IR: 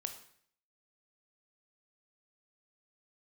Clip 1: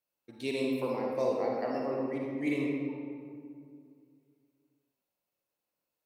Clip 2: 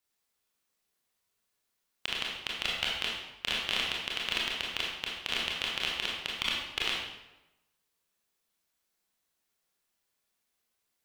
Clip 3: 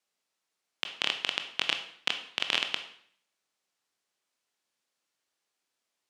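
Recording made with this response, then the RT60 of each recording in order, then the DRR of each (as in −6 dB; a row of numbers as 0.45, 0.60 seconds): 3; 2.2, 1.0, 0.60 seconds; −1.5, −4.0, 6.5 decibels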